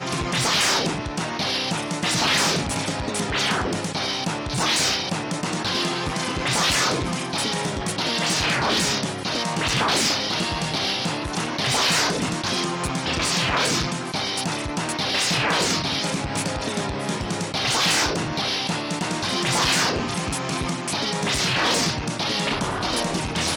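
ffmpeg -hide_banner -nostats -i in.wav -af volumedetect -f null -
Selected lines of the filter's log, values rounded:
mean_volume: -23.8 dB
max_volume: -10.9 dB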